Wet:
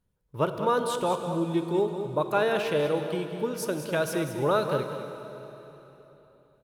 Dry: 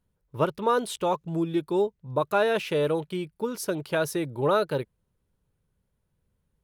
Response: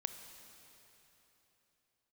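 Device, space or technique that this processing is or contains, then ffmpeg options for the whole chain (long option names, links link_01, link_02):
cave: -filter_complex "[0:a]aecho=1:1:199:0.316[link_01];[1:a]atrim=start_sample=2205[link_02];[link_01][link_02]afir=irnorm=-1:irlink=0"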